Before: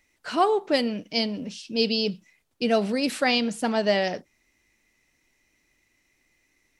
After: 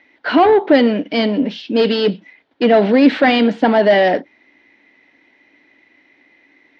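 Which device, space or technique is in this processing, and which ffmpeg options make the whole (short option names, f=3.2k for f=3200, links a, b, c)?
overdrive pedal into a guitar cabinet: -filter_complex "[0:a]asplit=2[a][b];[b]highpass=f=720:p=1,volume=21dB,asoftclip=type=tanh:threshold=-8.5dB[c];[a][c]amix=inputs=2:normalize=0,lowpass=f=2.4k:p=1,volume=-6dB,highpass=100,equalizer=f=140:t=q:w=4:g=-5,equalizer=f=280:t=q:w=4:g=9,equalizer=f=1.2k:t=q:w=4:g=-8,equalizer=f=2.6k:t=q:w=4:g=-7,lowpass=f=3.5k:w=0.5412,lowpass=f=3.5k:w=1.3066,volume=6dB"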